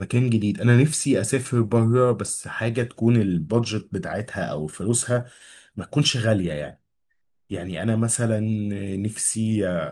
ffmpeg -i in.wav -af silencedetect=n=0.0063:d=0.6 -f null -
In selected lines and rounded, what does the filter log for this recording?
silence_start: 6.74
silence_end: 7.50 | silence_duration: 0.76